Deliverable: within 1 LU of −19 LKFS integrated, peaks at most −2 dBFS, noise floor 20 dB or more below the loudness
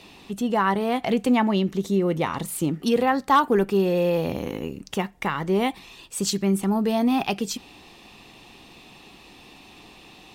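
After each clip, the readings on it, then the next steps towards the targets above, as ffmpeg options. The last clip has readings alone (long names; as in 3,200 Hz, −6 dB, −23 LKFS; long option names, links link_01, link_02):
integrated loudness −23.5 LKFS; sample peak −10.0 dBFS; target loudness −19.0 LKFS
→ -af "volume=4.5dB"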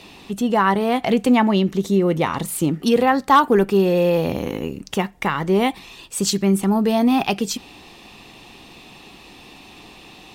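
integrated loudness −19.0 LKFS; sample peak −5.5 dBFS; background noise floor −45 dBFS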